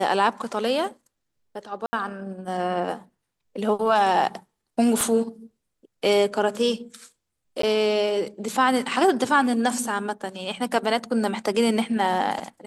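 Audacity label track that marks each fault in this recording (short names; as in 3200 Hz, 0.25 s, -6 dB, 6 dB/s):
1.860000	1.930000	gap 70 ms
5.010000	5.010000	pop
7.620000	7.630000	gap 13 ms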